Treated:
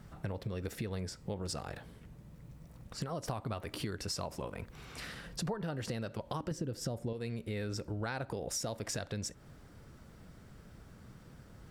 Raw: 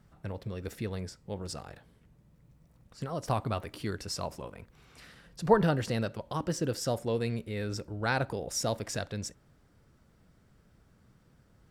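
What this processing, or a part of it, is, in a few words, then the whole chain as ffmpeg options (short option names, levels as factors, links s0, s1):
serial compression, leveller first: -filter_complex "[0:a]asettb=1/sr,asplit=3[s0][s1][s2];[s0]atrim=end=6.514[s3];[s1]atrim=start=6.51:end=7.13,asetpts=PTS-STARTPTS,afade=t=in:d=0.004:c=qsin,afade=t=out:st=0.616:d=0.004:c=qsin,lowshelf=f=470:g=11[s4];[s2]atrim=start=7.126[s5];[s3][s4]acrossfade=d=0.004:c1=hsin:c2=qsin[s6];[s6][s5]acrossfade=d=0.004:c1=qsin:c2=hsin,acompressor=threshold=0.0224:ratio=2.5,acompressor=threshold=0.00562:ratio=4,volume=2.66"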